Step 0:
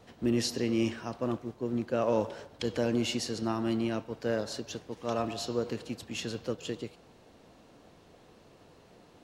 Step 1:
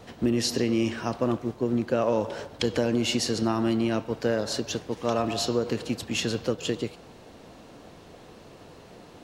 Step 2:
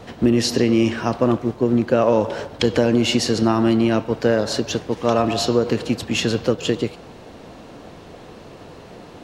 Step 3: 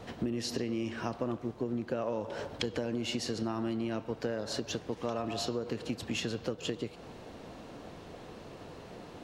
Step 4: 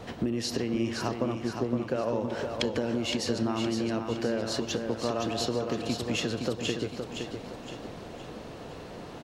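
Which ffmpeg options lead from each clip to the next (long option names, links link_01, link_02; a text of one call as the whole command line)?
ffmpeg -i in.wav -af "acompressor=threshold=-30dB:ratio=4,volume=9dB" out.wav
ffmpeg -i in.wav -af "highshelf=frequency=5200:gain=-6,volume=8dB" out.wav
ffmpeg -i in.wav -af "acompressor=threshold=-25dB:ratio=4,volume=-7dB" out.wav
ffmpeg -i in.wav -af "aecho=1:1:515|1030|1545|2060|2575:0.501|0.216|0.0927|0.0398|0.0171,volume=4dB" out.wav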